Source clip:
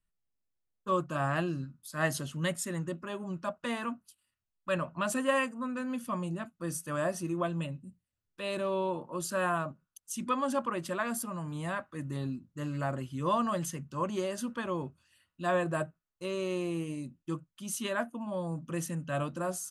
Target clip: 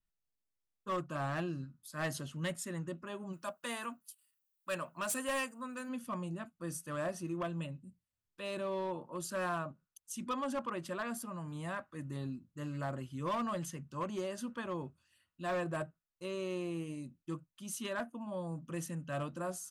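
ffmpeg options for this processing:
-filter_complex "[0:a]asplit=3[a][b][c];[a]afade=t=out:st=3.32:d=0.02[d];[b]aemphasis=mode=production:type=bsi,afade=t=in:st=3.32:d=0.02,afade=t=out:st=5.88:d=0.02[e];[c]afade=t=in:st=5.88:d=0.02[f];[d][e][f]amix=inputs=3:normalize=0,asoftclip=type=hard:threshold=-25.5dB,adynamicequalizer=threshold=0.00316:dfrequency=6100:dqfactor=0.7:tfrequency=6100:tqfactor=0.7:attack=5:release=100:ratio=0.375:range=2.5:mode=cutabove:tftype=highshelf,volume=-5dB"

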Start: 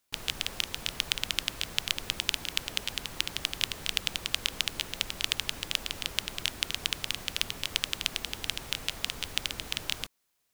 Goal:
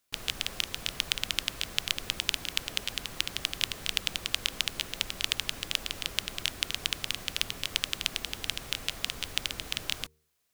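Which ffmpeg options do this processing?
-af "bandreject=f=900:w=12,bandreject=f=76.54:t=h:w=4,bandreject=f=153.08:t=h:w=4,bandreject=f=229.62:t=h:w=4,bandreject=f=306.16:t=h:w=4,bandreject=f=382.7:t=h:w=4,bandreject=f=459.24:t=h:w=4"

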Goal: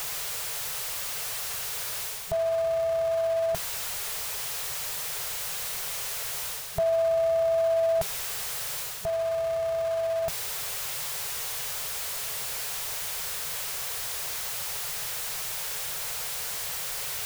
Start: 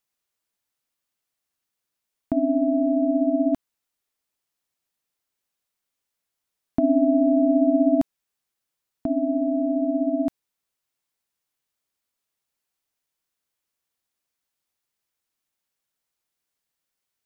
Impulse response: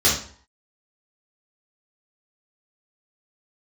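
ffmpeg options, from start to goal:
-af "aeval=exprs='val(0)+0.5*0.0251*sgn(val(0))':c=same,afftfilt=real='re*(1-between(b*sr/4096,180,390))':imag='im*(1-between(b*sr/4096,180,390))':win_size=4096:overlap=0.75,areverse,acompressor=mode=upward:threshold=-28dB:ratio=2.5,areverse"

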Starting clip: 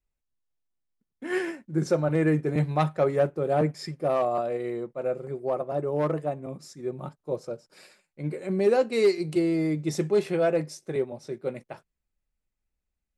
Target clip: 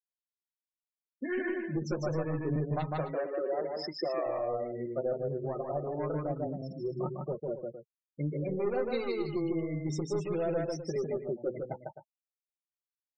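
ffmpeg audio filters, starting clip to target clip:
-filter_complex "[0:a]aeval=exprs='0.266*(cos(1*acos(clip(val(0)/0.266,-1,1)))-cos(1*PI/2))+0.0531*(cos(2*acos(clip(val(0)/0.266,-1,1)))-cos(2*PI/2))+0.0376*(cos(5*acos(clip(val(0)/0.266,-1,1)))-cos(5*PI/2))':c=same,asettb=1/sr,asplit=3[a][b][c];[a]atrim=end=2.904[d];[b]atrim=start=2.9:end=4.26,asetpts=PTS-STARTPTS,afade=t=in:d=0.004:c=qsin,afade=t=out:st=1.356:d=0.004:c=qsin,highpass=f=260:w=0.5412,highpass=f=260:w=1.3066[e];[c]atrim=start=4.256[f];[d][e]acrossfade=d=0.004:c1=hsin:c2=qsin[g];[g][f]acrossfade=d=0.004:c1=qsin:c2=hsin,afftfilt=real='re*gte(hypot(re,im),0.0398)':imag='im*gte(hypot(re,im),0.0398)':win_size=1024:overlap=0.75,acompressor=threshold=-30dB:ratio=6,asplit=2[h][i];[i]aecho=0:1:151.6|262.4:0.708|0.282[j];[h][j]amix=inputs=2:normalize=0,flanger=delay=4.9:depth=3.9:regen=-21:speed=0.27:shape=triangular,volume=1.5dB"

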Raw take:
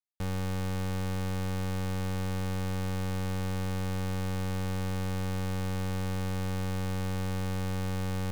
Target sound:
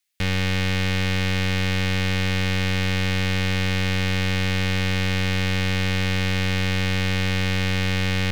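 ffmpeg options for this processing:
-filter_complex "[0:a]acrossover=split=5000[a][b];[b]acompressor=threshold=-59dB:ratio=4:attack=1:release=60[c];[a][c]amix=inputs=2:normalize=0,highshelf=f=1.5k:t=q:w=1.5:g=10.5,volume=8.5dB"

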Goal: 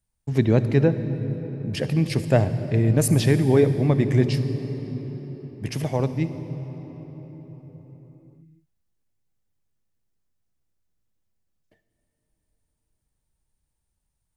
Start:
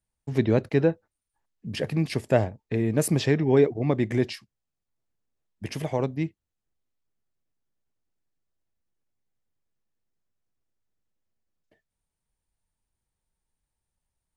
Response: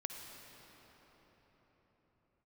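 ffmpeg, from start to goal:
-filter_complex "[0:a]asplit=2[a][b];[b]bass=f=250:g=11,treble=f=4k:g=8[c];[1:a]atrim=start_sample=2205[d];[c][d]afir=irnorm=-1:irlink=0,volume=-3dB[e];[a][e]amix=inputs=2:normalize=0,volume=-2.5dB"

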